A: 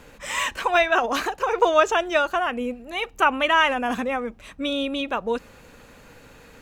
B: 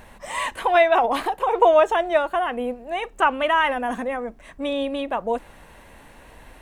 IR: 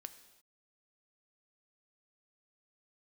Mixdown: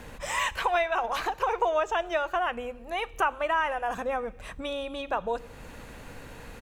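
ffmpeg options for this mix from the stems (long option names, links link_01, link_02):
-filter_complex "[0:a]lowshelf=frequency=200:gain=6.5,alimiter=limit=-12dB:level=0:latency=1:release=452,volume=-2dB,asplit=2[link_01][link_02];[link_02]volume=-6.5dB[link_03];[1:a]acrossover=split=220[link_04][link_05];[link_05]acompressor=threshold=-42dB:ratio=1.5[link_06];[link_04][link_06]amix=inputs=2:normalize=0,adelay=0.3,volume=-2.5dB,asplit=2[link_07][link_08];[link_08]apad=whole_len=291510[link_09];[link_01][link_09]sidechaincompress=threshold=-41dB:ratio=8:attack=35:release=335[link_10];[2:a]atrim=start_sample=2205[link_11];[link_03][link_11]afir=irnorm=-1:irlink=0[link_12];[link_10][link_07][link_12]amix=inputs=3:normalize=0"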